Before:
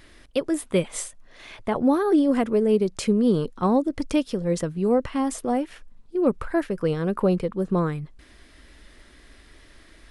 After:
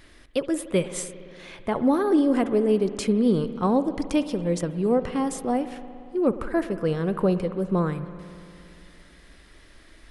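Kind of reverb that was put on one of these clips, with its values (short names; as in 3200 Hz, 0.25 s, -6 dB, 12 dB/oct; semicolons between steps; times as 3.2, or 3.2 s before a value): spring tank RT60 2.7 s, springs 57 ms, chirp 35 ms, DRR 11.5 dB; gain -1 dB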